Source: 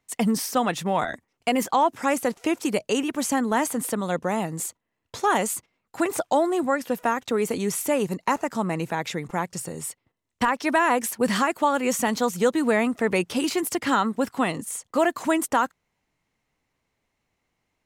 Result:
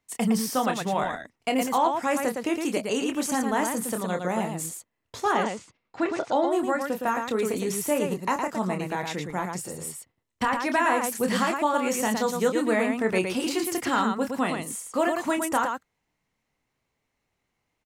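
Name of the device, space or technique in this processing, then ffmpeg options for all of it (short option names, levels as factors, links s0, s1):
slapback doubling: -filter_complex "[0:a]asplit=3[s0][s1][s2];[s0]afade=t=out:st=5.31:d=0.02[s3];[s1]lowpass=f=5400:w=0.5412,lowpass=f=5400:w=1.3066,afade=t=in:st=5.31:d=0.02,afade=t=out:st=6.5:d=0.02[s4];[s2]afade=t=in:st=6.5:d=0.02[s5];[s3][s4][s5]amix=inputs=3:normalize=0,asplit=3[s6][s7][s8];[s7]adelay=27,volume=0.447[s9];[s8]adelay=113,volume=0.562[s10];[s6][s9][s10]amix=inputs=3:normalize=0,volume=0.668"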